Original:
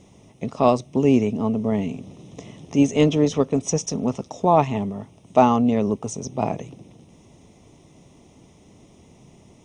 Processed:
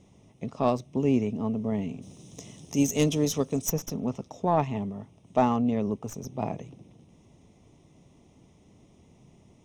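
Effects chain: tracing distortion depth 0.066 ms; tone controls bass +3 dB, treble -1 dB, from 2.01 s treble +15 dB, from 3.68 s treble -2 dB; gain -8 dB

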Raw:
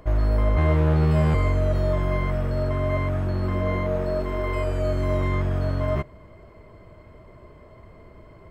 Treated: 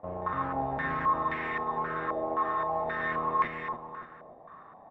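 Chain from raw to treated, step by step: HPF 110 Hz 12 dB/oct; low shelf 330 Hz -7.5 dB; limiter -22.5 dBFS, peak gain reduction 7.5 dB; AM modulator 120 Hz, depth 45%; on a send: feedback echo 0.503 s, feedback 43%, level -3.5 dB; on the sum: speed mistake 45 rpm record played at 78 rpm; stepped low-pass 3.8 Hz 680–2000 Hz; gain -3 dB

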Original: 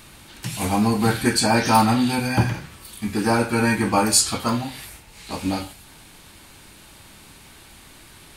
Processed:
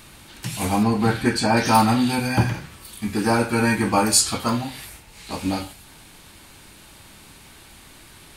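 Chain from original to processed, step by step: 0.83–1.57 high shelf 6200 Hz -12 dB

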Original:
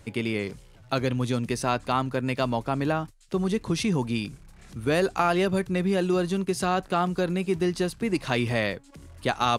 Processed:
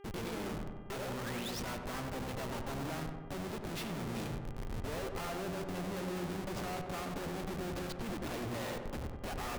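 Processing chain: treble ducked by the level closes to 2800 Hz, closed at -19.5 dBFS; low shelf 460 Hz -4 dB; reverse; compressor 20:1, threshold -36 dBFS, peak gain reduction 18.5 dB; reverse; harmoniser +7 st -7 dB, +12 st -12 dB; painted sound rise, 0.9–1.6, 360–6000 Hz -45 dBFS; Schmitt trigger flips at -46.5 dBFS; buzz 400 Hz, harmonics 8, -57 dBFS -8 dB/oct; on a send: darkening echo 94 ms, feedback 69%, low-pass 1700 Hz, level -5 dB

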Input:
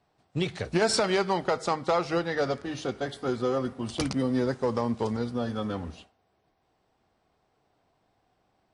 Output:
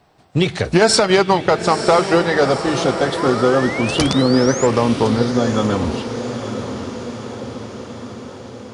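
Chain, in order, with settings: 3.17–4.67 painted sound rise 950–7400 Hz -41 dBFS; in parallel at -1 dB: compressor, threshold -33 dBFS, peak gain reduction 13 dB; 0.98–2.16 on the sum: transient shaper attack +3 dB, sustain -6 dB; on a send: diffused feedback echo 0.95 s, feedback 61%, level -9.5 dB; on the sum: maximiser +10.5 dB; gain -1 dB

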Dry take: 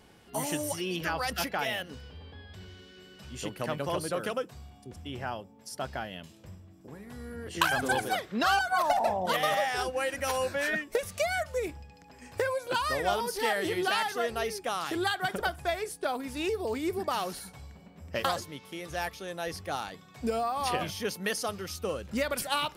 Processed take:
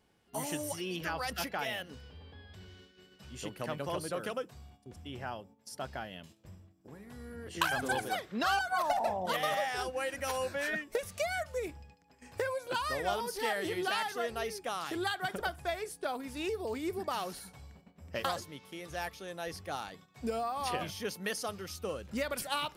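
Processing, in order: gate -51 dBFS, range -9 dB; gain -4.5 dB

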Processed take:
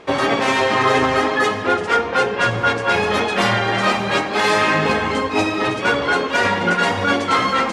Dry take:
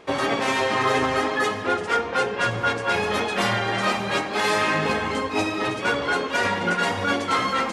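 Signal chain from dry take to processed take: high shelf 11000 Hz -11 dB; gain +5.5 dB

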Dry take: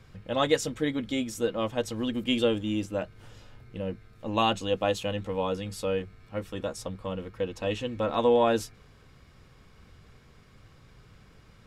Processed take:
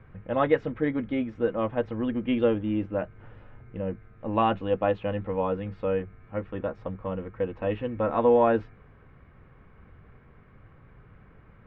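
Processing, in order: LPF 2100 Hz 24 dB/oct; gain +2 dB

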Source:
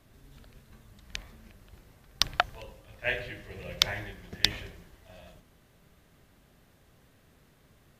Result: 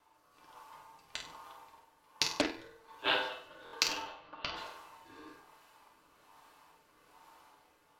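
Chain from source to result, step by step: 4.01–4.55 LPF 5600 Hz -> 2300 Hz 24 dB/oct; AGC gain up to 6 dB; ring modulator 1000 Hz; rotary speaker horn 1.2 Hz; flutter echo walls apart 8.3 m, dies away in 0.38 s; FDN reverb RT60 0.34 s, low-frequency decay 0.7×, high-frequency decay 0.9×, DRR 0.5 dB; stuck buffer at 3.64, samples 1024, times 3; Doppler distortion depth 0.63 ms; gain -4 dB

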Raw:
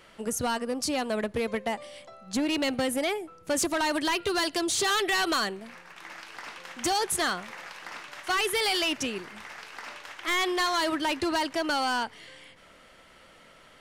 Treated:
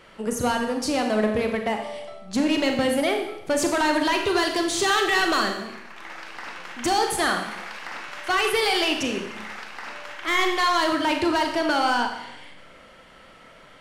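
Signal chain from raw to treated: high shelf 4300 Hz -7.5 dB; Schroeder reverb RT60 0.82 s, combs from 29 ms, DRR 3.5 dB; 7.51–9.65 mismatched tape noise reduction encoder only; gain +4.5 dB

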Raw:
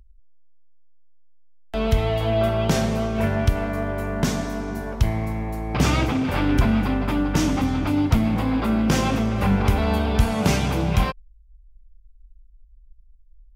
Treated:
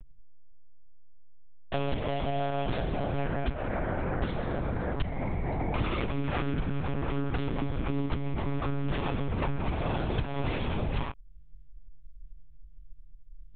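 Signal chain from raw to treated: compressor, threshold -32 dBFS, peak gain reduction 19 dB; monotone LPC vocoder at 8 kHz 140 Hz; gain +4.5 dB

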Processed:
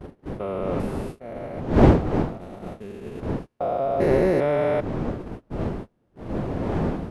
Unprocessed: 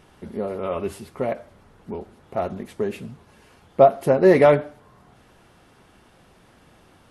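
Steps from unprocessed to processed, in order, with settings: stepped spectrum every 0.4 s; wind noise 360 Hz -26 dBFS; gate -32 dBFS, range -27 dB

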